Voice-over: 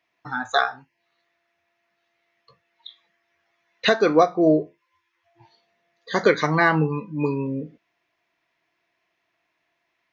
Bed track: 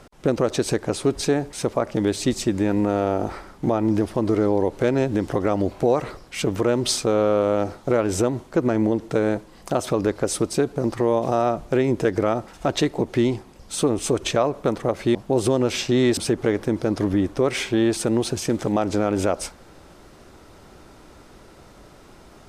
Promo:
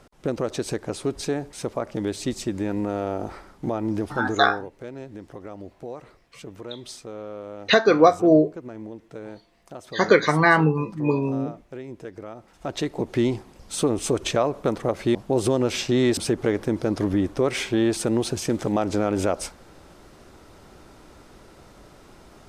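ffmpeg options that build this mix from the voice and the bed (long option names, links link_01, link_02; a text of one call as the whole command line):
ffmpeg -i stem1.wav -i stem2.wav -filter_complex "[0:a]adelay=3850,volume=1.5dB[link_01];[1:a]volume=10dB,afade=type=out:start_time=4.2:duration=0.48:silence=0.266073,afade=type=in:start_time=12.37:duration=0.88:silence=0.16788[link_02];[link_01][link_02]amix=inputs=2:normalize=0" out.wav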